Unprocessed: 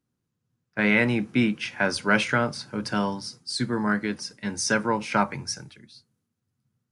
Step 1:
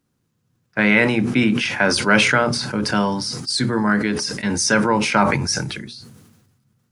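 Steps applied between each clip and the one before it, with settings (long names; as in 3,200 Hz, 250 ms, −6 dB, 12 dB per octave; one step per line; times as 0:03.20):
in parallel at +1 dB: downward compressor, threshold −32 dBFS, peak gain reduction 15.5 dB
on the sum: mains-hum notches 60/120/180/240/300/360/420 Hz
level that may fall only so fast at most 41 dB per second
level +3.5 dB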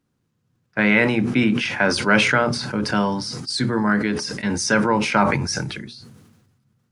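high-shelf EQ 6,300 Hz −7 dB
level −1 dB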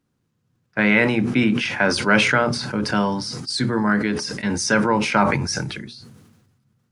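no processing that can be heard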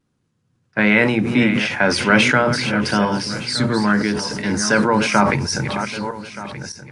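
feedback delay that plays each chunk backwards 611 ms, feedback 42%, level −9 dB
pitch vibrato 0.46 Hz 13 cents
level +2.5 dB
MP3 64 kbit/s 24,000 Hz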